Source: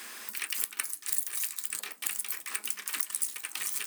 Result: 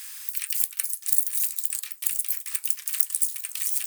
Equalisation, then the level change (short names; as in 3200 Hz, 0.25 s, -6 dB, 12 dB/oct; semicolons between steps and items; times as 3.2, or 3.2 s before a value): HPF 1200 Hz 6 dB/oct; tilt +4 dB/oct; -7.0 dB